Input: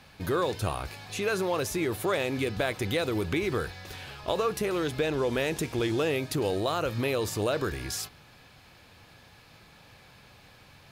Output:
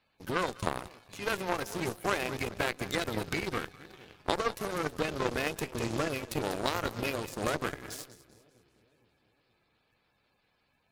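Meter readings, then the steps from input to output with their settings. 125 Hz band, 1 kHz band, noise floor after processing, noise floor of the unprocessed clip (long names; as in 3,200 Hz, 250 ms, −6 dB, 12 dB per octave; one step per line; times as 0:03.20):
−6.0 dB, −0.5 dB, −74 dBFS, −55 dBFS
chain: spectral magnitudes quantised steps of 30 dB
echo with a time of its own for lows and highs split 530 Hz, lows 463 ms, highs 195 ms, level −10 dB
harmonic generator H 2 −9 dB, 3 −16 dB, 7 −24 dB, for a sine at −14.5 dBFS
level +2 dB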